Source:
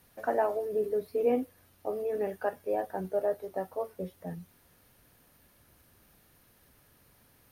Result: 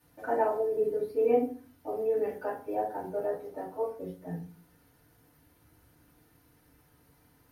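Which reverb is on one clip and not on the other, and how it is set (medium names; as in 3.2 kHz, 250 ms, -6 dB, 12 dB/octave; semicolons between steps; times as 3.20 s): FDN reverb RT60 0.41 s, low-frequency decay 1.35×, high-frequency decay 0.5×, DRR -9 dB; trim -10.5 dB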